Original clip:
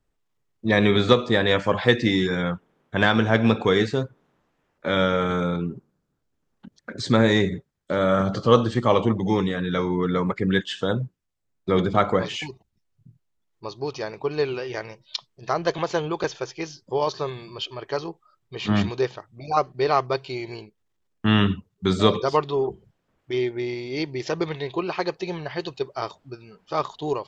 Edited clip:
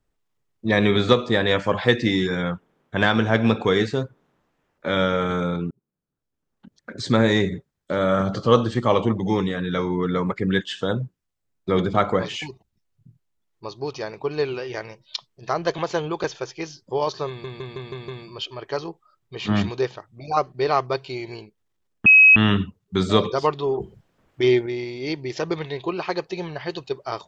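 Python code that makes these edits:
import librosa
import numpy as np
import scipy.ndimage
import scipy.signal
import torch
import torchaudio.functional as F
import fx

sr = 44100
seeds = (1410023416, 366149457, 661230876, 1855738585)

y = fx.edit(x, sr, fx.fade_in_span(start_s=5.71, length_s=1.36),
    fx.stutter(start_s=17.28, slice_s=0.16, count=6),
    fx.insert_tone(at_s=21.26, length_s=0.3, hz=2550.0, db=-7.5),
    fx.clip_gain(start_s=22.7, length_s=0.86, db=7.0), tone=tone)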